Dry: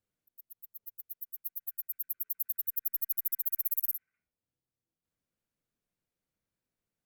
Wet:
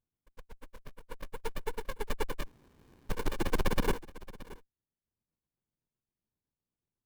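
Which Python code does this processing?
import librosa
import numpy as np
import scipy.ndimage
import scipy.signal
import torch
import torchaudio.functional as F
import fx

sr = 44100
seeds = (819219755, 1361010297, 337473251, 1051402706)

p1 = fx.pitch_ramps(x, sr, semitones=-6.0, every_ms=171)
p2 = p1 + fx.echo_single(p1, sr, ms=624, db=-18.5, dry=0)
p3 = fx.spec_freeze(p2, sr, seeds[0], at_s=2.45, hold_s=0.65)
y = fx.running_max(p3, sr, window=65)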